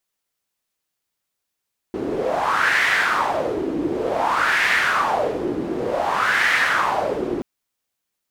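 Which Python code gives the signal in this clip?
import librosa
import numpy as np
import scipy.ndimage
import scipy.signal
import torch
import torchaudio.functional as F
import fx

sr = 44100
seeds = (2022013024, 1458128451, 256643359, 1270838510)

y = fx.wind(sr, seeds[0], length_s=5.48, low_hz=320.0, high_hz=1900.0, q=4.0, gusts=3, swing_db=6.5)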